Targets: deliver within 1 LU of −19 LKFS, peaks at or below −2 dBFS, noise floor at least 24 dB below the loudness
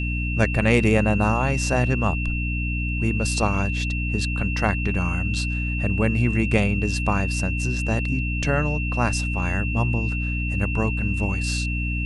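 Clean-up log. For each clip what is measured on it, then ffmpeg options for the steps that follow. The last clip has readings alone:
mains hum 60 Hz; hum harmonics up to 300 Hz; level of the hum −23 dBFS; interfering tone 2,700 Hz; level of the tone −29 dBFS; integrated loudness −23.0 LKFS; sample peak −2.5 dBFS; target loudness −19.0 LKFS
→ -af "bandreject=frequency=60:width_type=h:width=6,bandreject=frequency=120:width_type=h:width=6,bandreject=frequency=180:width_type=h:width=6,bandreject=frequency=240:width_type=h:width=6,bandreject=frequency=300:width_type=h:width=6"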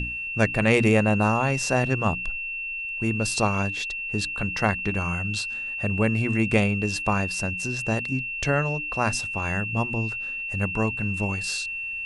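mains hum none found; interfering tone 2,700 Hz; level of the tone −29 dBFS
→ -af "bandreject=frequency=2700:width=30"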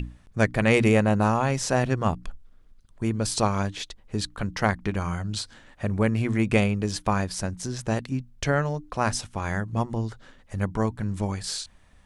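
interfering tone none found; integrated loudness −26.0 LKFS; sample peak −5.0 dBFS; target loudness −19.0 LKFS
→ -af "volume=7dB,alimiter=limit=-2dB:level=0:latency=1"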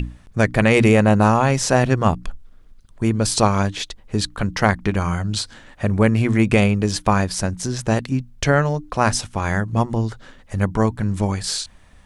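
integrated loudness −19.5 LKFS; sample peak −2.0 dBFS; background noise floor −48 dBFS

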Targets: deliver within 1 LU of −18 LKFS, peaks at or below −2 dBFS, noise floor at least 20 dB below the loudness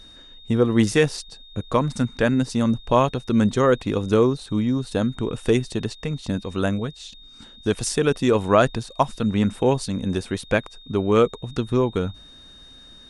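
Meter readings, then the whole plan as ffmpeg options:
interfering tone 3,700 Hz; level of the tone −45 dBFS; integrated loudness −22.5 LKFS; sample peak −4.0 dBFS; target loudness −18.0 LKFS
→ -af "bandreject=frequency=3700:width=30"
-af "volume=4.5dB,alimiter=limit=-2dB:level=0:latency=1"

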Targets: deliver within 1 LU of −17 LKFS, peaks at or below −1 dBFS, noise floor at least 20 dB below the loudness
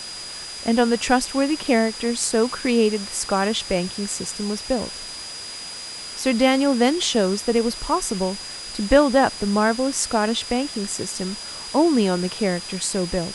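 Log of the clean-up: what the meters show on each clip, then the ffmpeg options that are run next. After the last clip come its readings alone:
interfering tone 4,900 Hz; level of the tone −34 dBFS; background noise floor −35 dBFS; target noise floor −42 dBFS; integrated loudness −22.0 LKFS; sample peak −1.5 dBFS; target loudness −17.0 LKFS
→ -af "bandreject=frequency=4900:width=30"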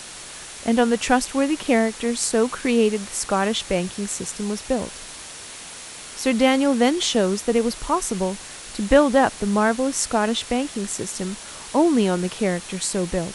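interfering tone none found; background noise floor −38 dBFS; target noise floor −42 dBFS
→ -af "afftdn=noise_reduction=6:noise_floor=-38"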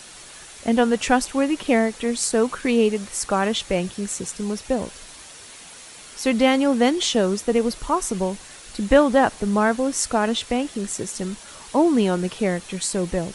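background noise floor −43 dBFS; integrated loudness −22.0 LKFS; sample peak −2.0 dBFS; target loudness −17.0 LKFS
→ -af "volume=5dB,alimiter=limit=-1dB:level=0:latency=1"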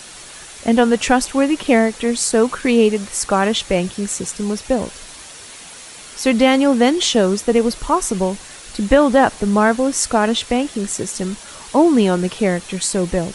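integrated loudness −17.0 LKFS; sample peak −1.0 dBFS; background noise floor −38 dBFS

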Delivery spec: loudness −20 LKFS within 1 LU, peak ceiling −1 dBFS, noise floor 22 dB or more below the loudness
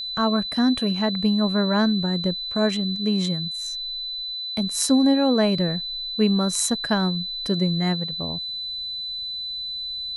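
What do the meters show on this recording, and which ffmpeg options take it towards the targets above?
interfering tone 4,000 Hz; level of the tone −28 dBFS; integrated loudness −23.0 LKFS; sample peak −6.5 dBFS; target loudness −20.0 LKFS
→ -af "bandreject=frequency=4000:width=30"
-af "volume=3dB"

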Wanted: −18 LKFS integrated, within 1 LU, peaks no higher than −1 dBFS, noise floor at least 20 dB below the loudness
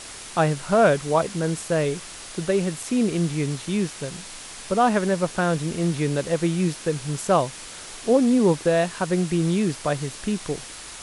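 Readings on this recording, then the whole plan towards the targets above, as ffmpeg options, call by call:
background noise floor −39 dBFS; target noise floor −44 dBFS; integrated loudness −23.5 LKFS; sample peak −7.0 dBFS; target loudness −18.0 LKFS
→ -af "afftdn=noise_reduction=6:noise_floor=-39"
-af "volume=5.5dB"

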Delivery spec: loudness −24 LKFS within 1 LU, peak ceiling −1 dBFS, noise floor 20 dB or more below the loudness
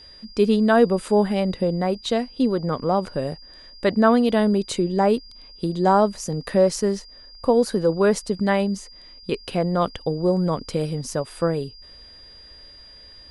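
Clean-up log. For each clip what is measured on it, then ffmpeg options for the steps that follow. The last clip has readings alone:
interfering tone 4,800 Hz; level of the tone −44 dBFS; integrated loudness −22.0 LKFS; sample peak −4.5 dBFS; target loudness −24.0 LKFS
→ -af "bandreject=frequency=4800:width=30"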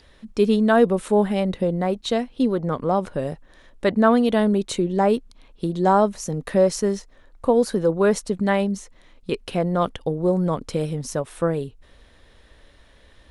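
interfering tone none found; integrated loudness −22.0 LKFS; sample peak −4.5 dBFS; target loudness −24.0 LKFS
→ -af "volume=-2dB"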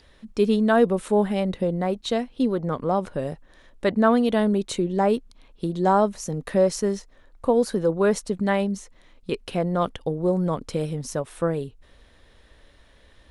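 integrated loudness −24.0 LKFS; sample peak −6.5 dBFS; background noise floor −55 dBFS

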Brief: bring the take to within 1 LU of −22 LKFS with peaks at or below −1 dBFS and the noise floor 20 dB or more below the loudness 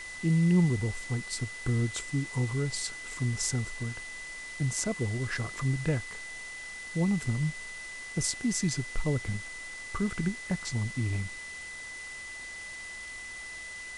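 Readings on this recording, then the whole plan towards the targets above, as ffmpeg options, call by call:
interfering tone 2,000 Hz; level of the tone −40 dBFS; background noise floor −42 dBFS; target noise floor −52 dBFS; integrated loudness −32.0 LKFS; sample peak −14.0 dBFS; target loudness −22.0 LKFS
→ -af "bandreject=frequency=2000:width=30"
-af "afftdn=noise_reduction=10:noise_floor=-42"
-af "volume=10dB"

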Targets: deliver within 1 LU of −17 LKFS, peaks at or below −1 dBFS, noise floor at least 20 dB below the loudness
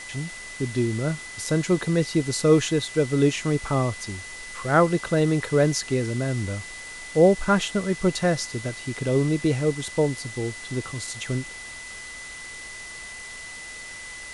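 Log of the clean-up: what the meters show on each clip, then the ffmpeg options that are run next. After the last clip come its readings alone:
interfering tone 2,000 Hz; level of the tone −38 dBFS; background noise floor −39 dBFS; target noise floor −44 dBFS; integrated loudness −24.0 LKFS; sample peak −5.5 dBFS; target loudness −17.0 LKFS
→ -af "bandreject=frequency=2000:width=30"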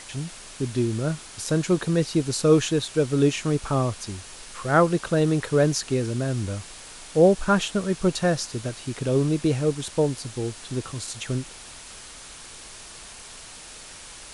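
interfering tone none found; background noise floor −43 dBFS; target noise floor −44 dBFS
→ -af "afftdn=noise_reduction=6:noise_floor=-43"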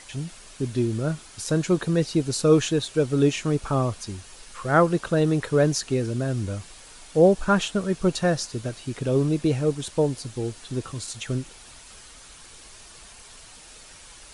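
background noise floor −47 dBFS; integrated loudness −24.0 LKFS; sample peak −5.5 dBFS; target loudness −17.0 LKFS
→ -af "volume=7dB,alimiter=limit=-1dB:level=0:latency=1"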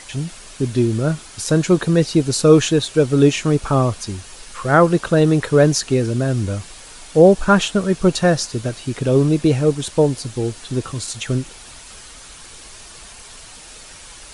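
integrated loudness −17.5 LKFS; sample peak −1.0 dBFS; background noise floor −40 dBFS

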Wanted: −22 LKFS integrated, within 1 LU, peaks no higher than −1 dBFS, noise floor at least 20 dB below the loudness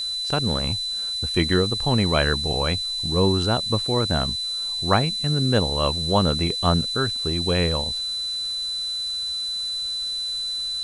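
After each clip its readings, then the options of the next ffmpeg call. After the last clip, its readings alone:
interfering tone 4,000 Hz; level of the tone −25 dBFS; background noise floor −28 dBFS; target noise floor −42 dBFS; integrated loudness −22.0 LKFS; sample peak −4.5 dBFS; target loudness −22.0 LKFS
→ -af "bandreject=frequency=4000:width=30"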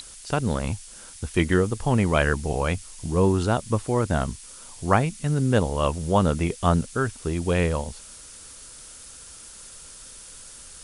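interfering tone none found; background noise floor −44 dBFS; target noise floor −45 dBFS
→ -af "afftdn=noise_reduction=6:noise_floor=-44"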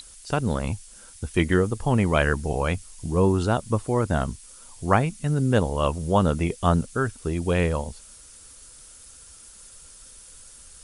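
background noise floor −48 dBFS; integrated loudness −24.5 LKFS; sample peak −4.5 dBFS; target loudness −22.0 LKFS
→ -af "volume=2.5dB"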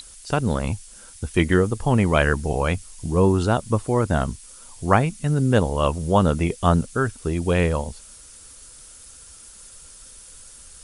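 integrated loudness −22.0 LKFS; sample peak −2.0 dBFS; background noise floor −45 dBFS

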